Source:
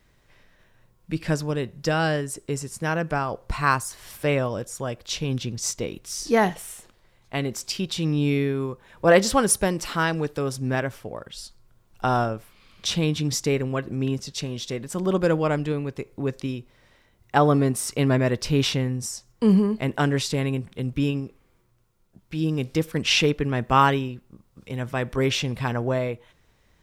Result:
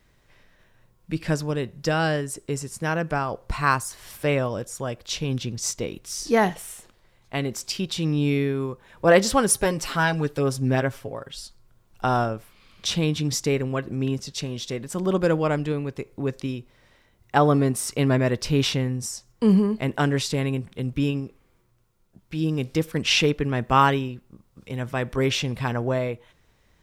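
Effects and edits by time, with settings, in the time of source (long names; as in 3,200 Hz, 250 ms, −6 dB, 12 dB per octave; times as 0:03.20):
0:09.55–0:11.39: comb filter 7.4 ms, depth 60%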